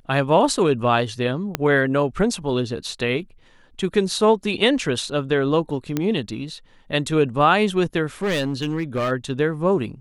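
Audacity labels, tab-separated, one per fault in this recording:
1.550000	1.550000	click −6 dBFS
5.970000	5.970000	click −9 dBFS
8.220000	9.120000	clipping −18.5 dBFS

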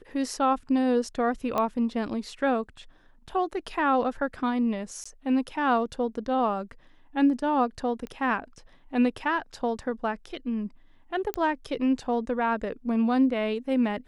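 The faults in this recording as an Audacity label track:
1.580000	1.580000	click −14 dBFS
5.040000	5.050000	drop-out 15 ms
8.070000	8.070000	click −25 dBFS
11.340000	11.340000	click −14 dBFS

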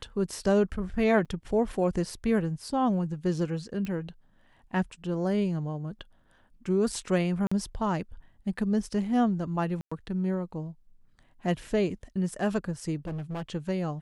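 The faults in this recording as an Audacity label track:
1.250000	1.260000	drop-out 6.3 ms
3.850000	3.850000	click −23 dBFS
7.470000	7.510000	drop-out 45 ms
9.810000	9.910000	drop-out 105 ms
13.050000	13.430000	clipping −31.5 dBFS

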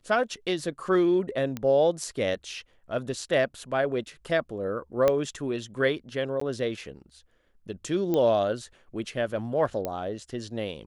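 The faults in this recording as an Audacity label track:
1.570000	1.570000	click −18 dBFS
5.080000	5.080000	click −10 dBFS
6.400000	6.410000	drop-out 14 ms
8.140000	8.140000	click −15 dBFS
9.850000	9.850000	click −16 dBFS

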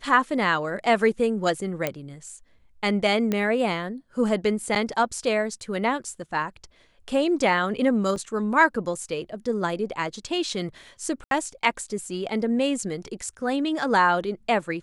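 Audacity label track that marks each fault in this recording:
1.870000	1.870000	click −10 dBFS
3.320000	3.320000	click −12 dBFS
4.750000	4.760000	drop-out 7.7 ms
8.160000	8.160000	drop-out 2.5 ms
11.240000	11.310000	drop-out 72 ms

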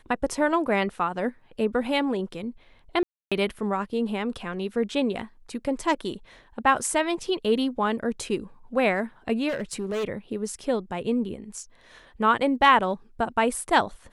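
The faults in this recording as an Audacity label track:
3.030000	3.320000	drop-out 286 ms
9.480000	10.050000	clipping −25 dBFS

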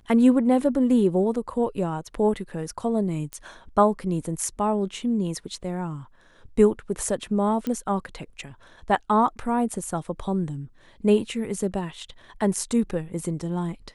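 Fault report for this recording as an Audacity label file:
3.330000	3.330000	click −19 dBFS
7.670000	7.670000	click −16 dBFS

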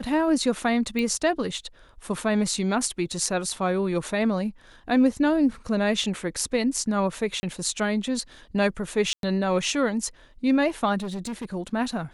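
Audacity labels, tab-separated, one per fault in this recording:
0.990000	0.990000	click −16 dBFS
3.120000	3.120000	drop-out 3.6 ms
7.400000	7.430000	drop-out 30 ms
9.130000	9.230000	drop-out 102 ms
10.980000	11.550000	clipping −28 dBFS

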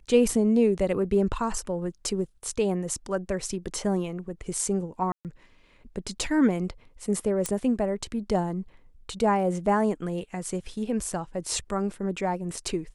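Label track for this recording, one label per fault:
5.120000	5.250000	drop-out 128 ms
7.460000	7.460000	click −13 dBFS

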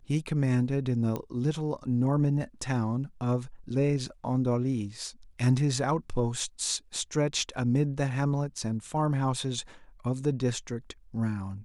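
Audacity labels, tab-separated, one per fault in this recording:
1.160000	1.160000	click −19 dBFS
6.400000	6.400000	drop-out 2.3 ms

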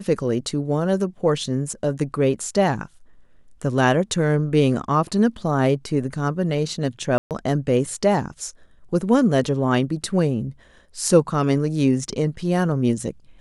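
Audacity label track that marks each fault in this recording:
7.180000	7.310000	drop-out 128 ms

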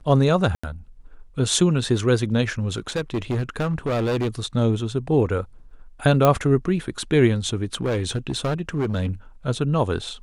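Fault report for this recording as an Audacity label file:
0.550000	0.640000	drop-out 85 ms
2.730000	4.290000	clipping −19.5 dBFS
6.250000	6.250000	click −5 dBFS
7.630000	9.070000	clipping −19 dBFS

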